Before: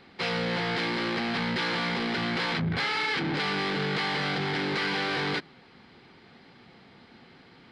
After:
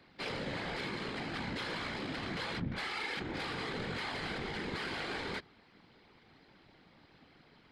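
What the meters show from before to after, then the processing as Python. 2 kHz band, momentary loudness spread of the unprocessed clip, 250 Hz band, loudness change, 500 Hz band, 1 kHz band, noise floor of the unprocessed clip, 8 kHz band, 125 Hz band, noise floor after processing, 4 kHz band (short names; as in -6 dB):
-10.0 dB, 2 LU, -10.0 dB, -10.0 dB, -9.5 dB, -10.0 dB, -55 dBFS, -7.0 dB, -10.0 dB, -63 dBFS, -10.5 dB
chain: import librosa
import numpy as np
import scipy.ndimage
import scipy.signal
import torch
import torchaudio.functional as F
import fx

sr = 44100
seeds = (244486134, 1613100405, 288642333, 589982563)

y = 10.0 ** (-22.0 / 20.0) * np.tanh(x / 10.0 ** (-22.0 / 20.0))
y = fx.whisperise(y, sr, seeds[0])
y = y * librosa.db_to_amplitude(-8.5)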